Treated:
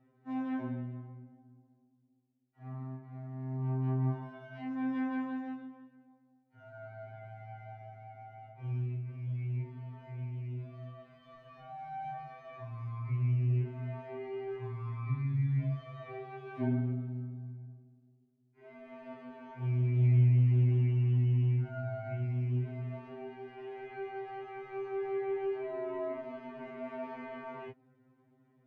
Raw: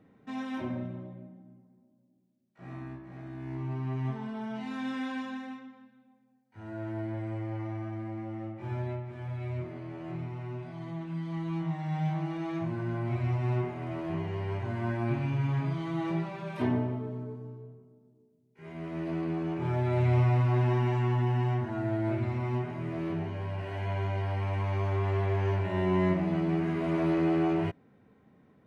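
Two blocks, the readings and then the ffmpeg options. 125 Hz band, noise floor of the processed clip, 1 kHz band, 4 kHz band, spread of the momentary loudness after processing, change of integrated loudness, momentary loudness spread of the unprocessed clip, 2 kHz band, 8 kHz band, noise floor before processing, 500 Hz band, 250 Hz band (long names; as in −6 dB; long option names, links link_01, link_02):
−1.5 dB, −69 dBFS, −7.5 dB, below −10 dB, 20 LU, −2.5 dB, 15 LU, −8.5 dB, can't be measured, −65 dBFS, −6.0 dB, −7.0 dB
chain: -filter_complex "[0:a]acrossover=split=2600[link_01][link_02];[link_02]acompressor=threshold=-57dB:ratio=4:attack=1:release=60[link_03];[link_01][link_03]amix=inputs=2:normalize=0,aemphasis=mode=reproduction:type=75kf,afftfilt=real='re*2.45*eq(mod(b,6),0)':imag='im*2.45*eq(mod(b,6),0)':win_size=2048:overlap=0.75,volume=-4dB"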